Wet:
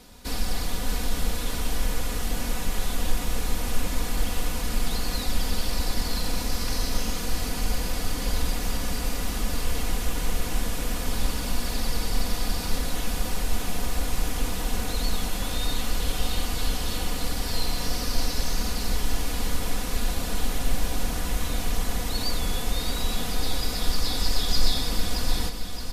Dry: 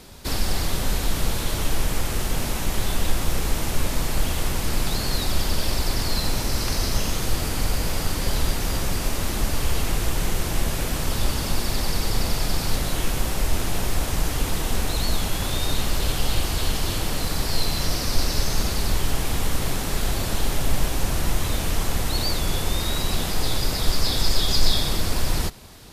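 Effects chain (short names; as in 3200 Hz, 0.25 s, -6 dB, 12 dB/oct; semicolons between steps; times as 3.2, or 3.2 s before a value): comb 4.1 ms, depth 59%; on a send: feedback echo 0.62 s, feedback 52%, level -8 dB; on the sum: gain -6 dB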